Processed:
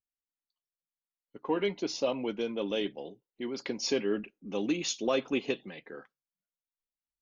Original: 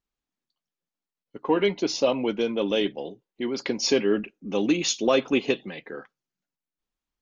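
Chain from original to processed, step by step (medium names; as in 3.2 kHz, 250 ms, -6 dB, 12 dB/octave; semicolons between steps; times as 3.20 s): spectral noise reduction 11 dB; trim -7.5 dB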